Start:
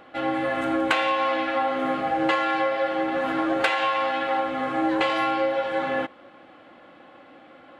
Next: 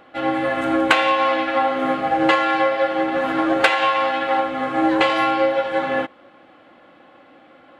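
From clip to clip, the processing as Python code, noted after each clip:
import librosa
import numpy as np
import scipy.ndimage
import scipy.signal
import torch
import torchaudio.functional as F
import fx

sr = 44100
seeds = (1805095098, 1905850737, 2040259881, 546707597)

y = fx.upward_expand(x, sr, threshold_db=-33.0, expansion=1.5)
y = F.gain(torch.from_numpy(y), 7.5).numpy()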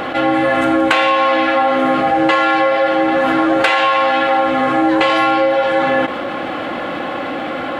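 y = fx.env_flatten(x, sr, amount_pct=70)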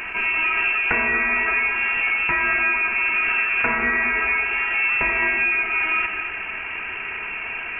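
y = fx.freq_invert(x, sr, carrier_hz=3000)
y = fx.rev_gated(y, sr, seeds[0], gate_ms=270, shape='rising', drr_db=6.0)
y = F.gain(torch.from_numpy(y), -8.0).numpy()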